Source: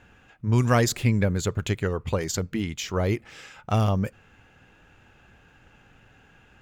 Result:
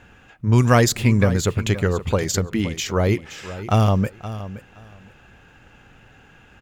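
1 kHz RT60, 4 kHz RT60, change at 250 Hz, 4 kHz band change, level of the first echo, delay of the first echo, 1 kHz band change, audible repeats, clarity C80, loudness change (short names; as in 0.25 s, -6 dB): none, none, +5.5 dB, +5.5 dB, -14.0 dB, 0.521 s, +5.5 dB, 2, none, +5.5 dB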